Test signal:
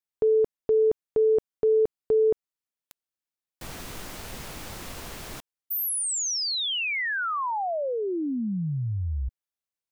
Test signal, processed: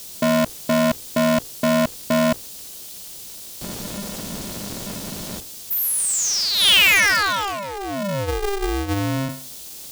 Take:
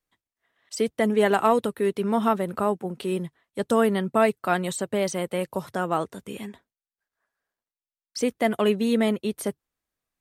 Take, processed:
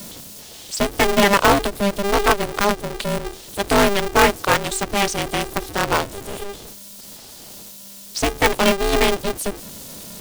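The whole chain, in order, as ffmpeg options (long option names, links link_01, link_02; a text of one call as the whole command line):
ffmpeg -i in.wav -filter_complex "[0:a]aeval=exprs='val(0)+0.5*0.0168*sgn(val(0))':channel_layout=same,bandreject=frequency=60:width_type=h:width=6,bandreject=frequency=120:width_type=h:width=6,bandreject=frequency=180:width_type=h:width=6,bandreject=frequency=240:width_type=h:width=6,bandreject=frequency=300:width_type=h:width=6,acompressor=mode=upward:threshold=-32dB:ratio=1.5:attack=0.39:release=22:knee=2.83:detection=peak,equalizer=frequency=2900:width=1:gain=7.5,acrossover=split=530|3900[link_01][link_02][link_03];[link_02]acrusher=bits=3:mix=0:aa=0.5[link_04];[link_01][link_04][link_03]amix=inputs=3:normalize=0,aeval=exprs='val(0)*sgn(sin(2*PI*200*n/s))':channel_layout=same,volume=4.5dB" out.wav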